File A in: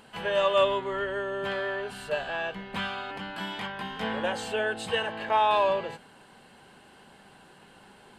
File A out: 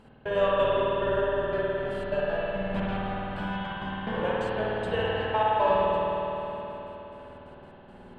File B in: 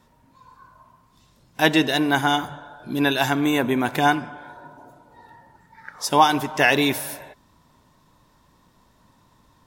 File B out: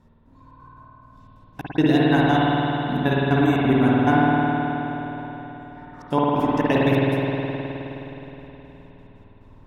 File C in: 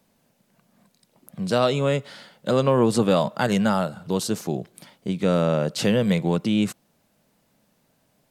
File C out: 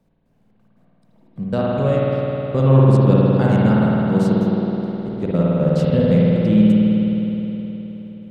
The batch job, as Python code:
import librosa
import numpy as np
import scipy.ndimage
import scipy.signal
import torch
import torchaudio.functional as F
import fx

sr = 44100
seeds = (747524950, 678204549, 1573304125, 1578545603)

y = fx.tilt_eq(x, sr, slope=-3.0)
y = fx.step_gate(y, sr, bpm=177, pattern='x..xxx.x.', floor_db=-60.0, edge_ms=4.5)
y = fx.rev_spring(y, sr, rt60_s=3.9, pass_ms=(52,), chirp_ms=30, drr_db=-6.5)
y = y * 10.0 ** (-4.5 / 20.0)